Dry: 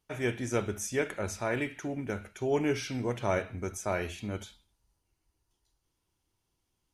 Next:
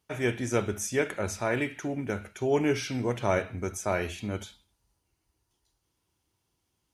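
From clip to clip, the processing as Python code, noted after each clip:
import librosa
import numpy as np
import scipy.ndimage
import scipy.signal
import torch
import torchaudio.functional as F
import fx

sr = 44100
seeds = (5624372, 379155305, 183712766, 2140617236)

y = scipy.signal.sosfilt(scipy.signal.butter(2, 53.0, 'highpass', fs=sr, output='sos'), x)
y = F.gain(torch.from_numpy(y), 3.0).numpy()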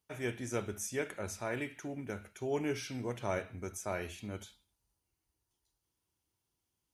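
y = fx.high_shelf(x, sr, hz=9200.0, db=8.0)
y = F.gain(torch.from_numpy(y), -9.0).numpy()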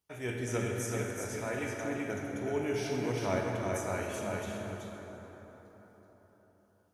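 y = fx.tremolo_random(x, sr, seeds[0], hz=3.5, depth_pct=55)
y = y + 10.0 ** (-4.0 / 20.0) * np.pad(y, (int(379 * sr / 1000.0), 0))[:len(y)]
y = fx.rev_plate(y, sr, seeds[1], rt60_s=4.6, hf_ratio=0.45, predelay_ms=0, drr_db=0.0)
y = F.gain(torch.from_numpy(y), 1.5).numpy()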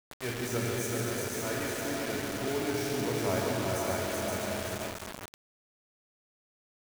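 y = fx.peak_eq(x, sr, hz=2900.0, db=-4.5, octaves=0.44)
y = fx.echo_multitap(y, sr, ms=(145, 521, 568), db=(-6.0, -8.0, -8.5))
y = fx.quant_dither(y, sr, seeds[2], bits=6, dither='none')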